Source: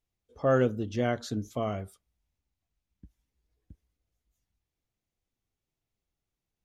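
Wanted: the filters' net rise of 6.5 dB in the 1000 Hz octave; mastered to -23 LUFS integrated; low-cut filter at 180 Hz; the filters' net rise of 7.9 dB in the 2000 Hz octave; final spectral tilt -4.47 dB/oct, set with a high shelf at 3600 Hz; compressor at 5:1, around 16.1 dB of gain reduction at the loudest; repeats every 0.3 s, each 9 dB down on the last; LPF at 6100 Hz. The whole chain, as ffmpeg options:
-af "highpass=180,lowpass=6.1k,equalizer=f=1k:t=o:g=7.5,equalizer=f=2k:t=o:g=8.5,highshelf=f=3.6k:g=-4.5,acompressor=threshold=-35dB:ratio=5,aecho=1:1:300|600|900|1200:0.355|0.124|0.0435|0.0152,volume=17dB"

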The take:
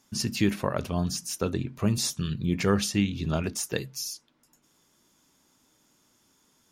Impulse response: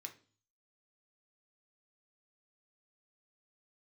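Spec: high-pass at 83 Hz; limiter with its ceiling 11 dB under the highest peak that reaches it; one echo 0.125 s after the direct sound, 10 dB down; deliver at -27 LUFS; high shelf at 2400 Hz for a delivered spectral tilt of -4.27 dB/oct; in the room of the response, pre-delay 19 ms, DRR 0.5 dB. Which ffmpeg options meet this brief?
-filter_complex "[0:a]highpass=83,highshelf=f=2.4k:g=-3.5,alimiter=limit=-20.5dB:level=0:latency=1,aecho=1:1:125:0.316,asplit=2[a][b];[1:a]atrim=start_sample=2205,adelay=19[c];[b][c]afir=irnorm=-1:irlink=0,volume=4dB[d];[a][d]amix=inputs=2:normalize=0,volume=3dB"

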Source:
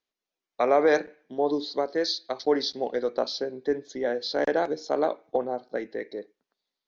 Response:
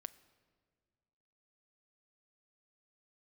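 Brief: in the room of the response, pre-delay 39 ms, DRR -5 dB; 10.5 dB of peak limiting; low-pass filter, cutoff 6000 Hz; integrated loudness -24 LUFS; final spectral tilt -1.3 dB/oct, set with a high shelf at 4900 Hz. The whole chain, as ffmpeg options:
-filter_complex "[0:a]lowpass=6k,highshelf=f=4.9k:g=8.5,alimiter=limit=-21dB:level=0:latency=1,asplit=2[a][b];[1:a]atrim=start_sample=2205,adelay=39[c];[b][c]afir=irnorm=-1:irlink=0,volume=10dB[d];[a][d]amix=inputs=2:normalize=0,volume=2dB"

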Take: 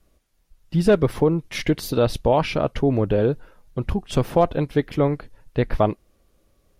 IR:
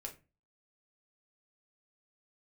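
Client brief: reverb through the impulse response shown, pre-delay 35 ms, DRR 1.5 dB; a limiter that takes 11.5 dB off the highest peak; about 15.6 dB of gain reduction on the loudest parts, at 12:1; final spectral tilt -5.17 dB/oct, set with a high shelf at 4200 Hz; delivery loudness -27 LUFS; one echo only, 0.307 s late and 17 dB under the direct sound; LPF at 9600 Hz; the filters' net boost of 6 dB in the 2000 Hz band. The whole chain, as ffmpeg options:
-filter_complex "[0:a]lowpass=9.6k,equalizer=f=2k:t=o:g=6.5,highshelf=f=4.2k:g=4.5,acompressor=threshold=-28dB:ratio=12,alimiter=level_in=5.5dB:limit=-24dB:level=0:latency=1,volume=-5.5dB,aecho=1:1:307:0.141,asplit=2[a][b];[1:a]atrim=start_sample=2205,adelay=35[c];[b][c]afir=irnorm=-1:irlink=0,volume=1.5dB[d];[a][d]amix=inputs=2:normalize=0,volume=10.5dB"

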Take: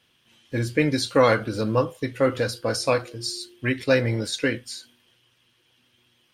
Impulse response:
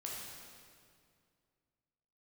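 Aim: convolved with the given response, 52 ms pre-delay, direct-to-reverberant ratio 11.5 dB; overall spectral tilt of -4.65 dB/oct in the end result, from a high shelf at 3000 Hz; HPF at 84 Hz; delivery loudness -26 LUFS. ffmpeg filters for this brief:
-filter_complex "[0:a]highpass=84,highshelf=f=3k:g=-3,asplit=2[a][b];[1:a]atrim=start_sample=2205,adelay=52[c];[b][c]afir=irnorm=-1:irlink=0,volume=-11dB[d];[a][d]amix=inputs=2:normalize=0,volume=-2dB"

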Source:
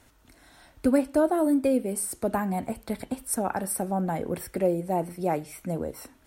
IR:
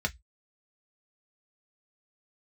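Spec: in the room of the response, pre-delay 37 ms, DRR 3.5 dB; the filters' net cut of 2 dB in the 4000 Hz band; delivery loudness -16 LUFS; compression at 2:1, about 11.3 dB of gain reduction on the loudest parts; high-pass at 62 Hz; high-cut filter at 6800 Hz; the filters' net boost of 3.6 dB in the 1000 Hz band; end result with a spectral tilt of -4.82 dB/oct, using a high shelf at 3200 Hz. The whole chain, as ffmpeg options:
-filter_complex "[0:a]highpass=62,lowpass=6.8k,equalizer=f=1k:t=o:g=5,highshelf=f=3.2k:g=5,equalizer=f=4k:t=o:g=-6.5,acompressor=threshold=-37dB:ratio=2,asplit=2[a][b];[1:a]atrim=start_sample=2205,adelay=37[c];[b][c]afir=irnorm=-1:irlink=0,volume=-10dB[d];[a][d]amix=inputs=2:normalize=0,volume=18dB"

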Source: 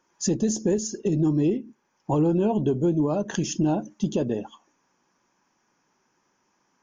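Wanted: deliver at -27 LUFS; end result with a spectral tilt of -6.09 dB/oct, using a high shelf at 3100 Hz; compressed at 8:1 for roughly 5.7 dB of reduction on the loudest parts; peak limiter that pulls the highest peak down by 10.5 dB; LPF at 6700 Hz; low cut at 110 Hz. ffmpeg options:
-af "highpass=110,lowpass=6.7k,highshelf=f=3.1k:g=-8,acompressor=threshold=-24dB:ratio=8,volume=8.5dB,alimiter=limit=-18dB:level=0:latency=1"

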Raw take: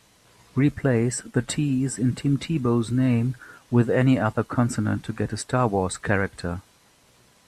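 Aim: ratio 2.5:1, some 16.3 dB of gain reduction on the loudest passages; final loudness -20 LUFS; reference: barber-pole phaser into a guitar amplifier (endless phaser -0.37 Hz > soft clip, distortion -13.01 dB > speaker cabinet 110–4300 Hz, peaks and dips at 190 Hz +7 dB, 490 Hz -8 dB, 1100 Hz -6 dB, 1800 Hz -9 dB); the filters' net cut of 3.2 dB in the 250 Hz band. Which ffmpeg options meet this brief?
-filter_complex "[0:a]equalizer=f=250:t=o:g=-5,acompressor=threshold=-43dB:ratio=2.5,asplit=2[a][b];[b]afreqshift=-0.37[c];[a][c]amix=inputs=2:normalize=1,asoftclip=threshold=-38dB,highpass=110,equalizer=f=190:t=q:w=4:g=7,equalizer=f=490:t=q:w=4:g=-8,equalizer=f=1.1k:t=q:w=4:g=-6,equalizer=f=1.8k:t=q:w=4:g=-9,lowpass=f=4.3k:w=0.5412,lowpass=f=4.3k:w=1.3066,volume=27.5dB"

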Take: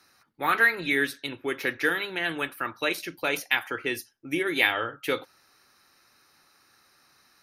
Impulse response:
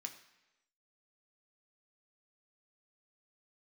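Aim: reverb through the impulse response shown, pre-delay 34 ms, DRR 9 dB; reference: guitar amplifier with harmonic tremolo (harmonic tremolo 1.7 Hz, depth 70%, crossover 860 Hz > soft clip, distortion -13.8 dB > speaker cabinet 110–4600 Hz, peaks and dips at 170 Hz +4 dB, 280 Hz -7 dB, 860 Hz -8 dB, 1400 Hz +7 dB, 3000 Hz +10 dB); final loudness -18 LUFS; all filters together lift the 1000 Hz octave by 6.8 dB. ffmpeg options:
-filter_complex "[0:a]equalizer=f=1k:t=o:g=6,asplit=2[a][b];[1:a]atrim=start_sample=2205,adelay=34[c];[b][c]afir=irnorm=-1:irlink=0,volume=-5.5dB[d];[a][d]amix=inputs=2:normalize=0,acrossover=split=860[e][f];[e]aeval=exprs='val(0)*(1-0.7/2+0.7/2*cos(2*PI*1.7*n/s))':c=same[g];[f]aeval=exprs='val(0)*(1-0.7/2-0.7/2*cos(2*PI*1.7*n/s))':c=same[h];[g][h]amix=inputs=2:normalize=0,asoftclip=threshold=-21.5dB,highpass=110,equalizer=f=170:t=q:w=4:g=4,equalizer=f=280:t=q:w=4:g=-7,equalizer=f=860:t=q:w=4:g=-8,equalizer=f=1.4k:t=q:w=4:g=7,equalizer=f=3k:t=q:w=4:g=10,lowpass=f=4.6k:w=0.5412,lowpass=f=4.6k:w=1.3066,volume=10.5dB"

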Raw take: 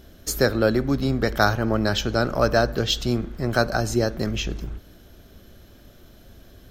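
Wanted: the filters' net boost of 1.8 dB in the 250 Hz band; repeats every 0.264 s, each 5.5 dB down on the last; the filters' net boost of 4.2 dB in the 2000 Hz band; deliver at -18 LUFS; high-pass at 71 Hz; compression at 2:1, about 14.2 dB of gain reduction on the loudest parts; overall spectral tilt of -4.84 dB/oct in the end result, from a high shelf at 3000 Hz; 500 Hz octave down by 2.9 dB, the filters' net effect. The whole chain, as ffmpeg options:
-af "highpass=71,equalizer=f=250:t=o:g=3.5,equalizer=f=500:t=o:g=-5,equalizer=f=2k:t=o:g=8,highshelf=f=3k:g=-4,acompressor=threshold=-41dB:ratio=2,aecho=1:1:264|528|792|1056|1320|1584|1848:0.531|0.281|0.149|0.079|0.0419|0.0222|0.0118,volume=16dB"

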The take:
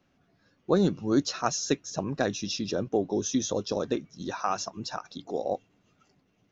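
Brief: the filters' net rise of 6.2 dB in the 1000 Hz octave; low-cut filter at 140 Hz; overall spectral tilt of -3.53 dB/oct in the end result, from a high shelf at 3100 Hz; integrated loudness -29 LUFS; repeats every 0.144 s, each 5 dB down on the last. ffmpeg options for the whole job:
-af "highpass=140,equalizer=f=1k:t=o:g=8,highshelf=f=3.1k:g=4.5,aecho=1:1:144|288|432|576|720|864|1008:0.562|0.315|0.176|0.0988|0.0553|0.031|0.0173,volume=-3dB"

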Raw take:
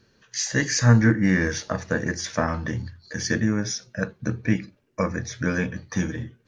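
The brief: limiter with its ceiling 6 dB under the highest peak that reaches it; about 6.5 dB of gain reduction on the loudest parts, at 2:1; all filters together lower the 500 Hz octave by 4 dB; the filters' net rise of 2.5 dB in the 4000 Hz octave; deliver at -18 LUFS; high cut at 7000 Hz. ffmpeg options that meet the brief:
-af "lowpass=7k,equalizer=f=500:t=o:g=-5,equalizer=f=4k:t=o:g=4.5,acompressor=threshold=-23dB:ratio=2,volume=11.5dB,alimiter=limit=-5dB:level=0:latency=1"

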